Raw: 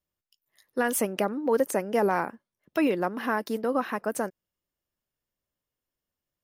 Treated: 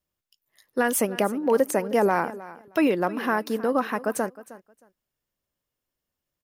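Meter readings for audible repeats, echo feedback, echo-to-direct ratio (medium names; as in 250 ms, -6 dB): 2, 18%, -17.5 dB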